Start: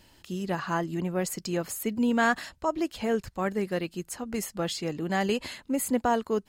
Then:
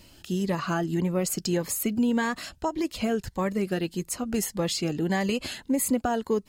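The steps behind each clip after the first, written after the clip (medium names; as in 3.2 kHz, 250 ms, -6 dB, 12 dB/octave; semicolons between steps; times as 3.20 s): compression, threshold -26 dBFS, peak gain reduction 7.5 dB; Shepard-style phaser rising 1.7 Hz; trim +6 dB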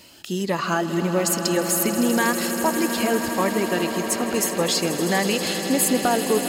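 high-pass 360 Hz 6 dB/octave; on a send: echo with a slow build-up 80 ms, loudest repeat 8, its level -14 dB; on the sum: trim +7 dB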